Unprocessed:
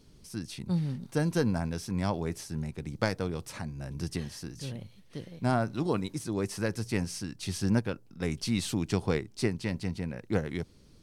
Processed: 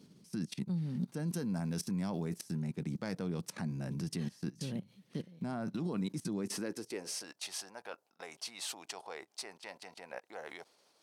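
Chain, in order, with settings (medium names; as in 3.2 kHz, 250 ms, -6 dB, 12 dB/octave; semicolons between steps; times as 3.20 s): level held to a coarse grid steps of 21 dB; high-pass sweep 180 Hz -> 730 Hz, 6.35–7.41 s; 1.27–2.56 s: treble shelf 5.6 kHz -> 8.2 kHz +8 dB; trim +2.5 dB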